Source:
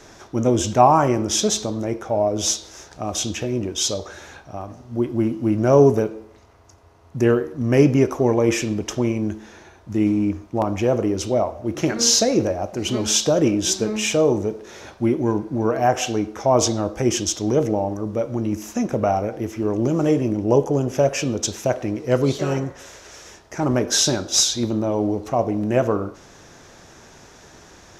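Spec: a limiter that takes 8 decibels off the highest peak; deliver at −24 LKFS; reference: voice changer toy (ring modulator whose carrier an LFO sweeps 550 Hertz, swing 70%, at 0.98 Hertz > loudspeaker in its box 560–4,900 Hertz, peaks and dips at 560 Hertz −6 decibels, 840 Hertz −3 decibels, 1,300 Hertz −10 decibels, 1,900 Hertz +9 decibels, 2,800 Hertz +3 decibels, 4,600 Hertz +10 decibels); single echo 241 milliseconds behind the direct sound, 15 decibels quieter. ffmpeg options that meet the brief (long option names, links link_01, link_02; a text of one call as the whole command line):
ffmpeg -i in.wav -af "alimiter=limit=-10dB:level=0:latency=1,aecho=1:1:241:0.178,aeval=exprs='val(0)*sin(2*PI*550*n/s+550*0.7/0.98*sin(2*PI*0.98*n/s))':channel_layout=same,highpass=560,equalizer=frequency=560:width_type=q:width=4:gain=-6,equalizer=frequency=840:width_type=q:width=4:gain=-3,equalizer=frequency=1300:width_type=q:width=4:gain=-10,equalizer=frequency=1900:width_type=q:width=4:gain=9,equalizer=frequency=2800:width_type=q:width=4:gain=3,equalizer=frequency=4600:width_type=q:width=4:gain=10,lowpass=frequency=4900:width=0.5412,lowpass=frequency=4900:width=1.3066,volume=4dB" out.wav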